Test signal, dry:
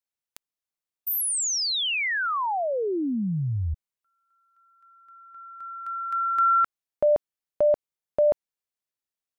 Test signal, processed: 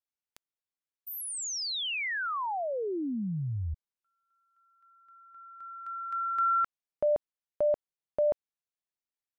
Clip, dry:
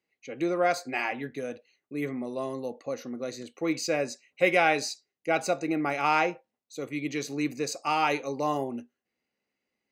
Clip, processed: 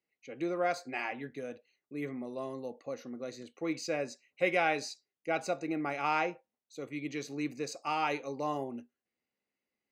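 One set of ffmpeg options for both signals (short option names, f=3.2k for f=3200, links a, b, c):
-af "highshelf=f=8.8k:g=-8.5,volume=-6dB"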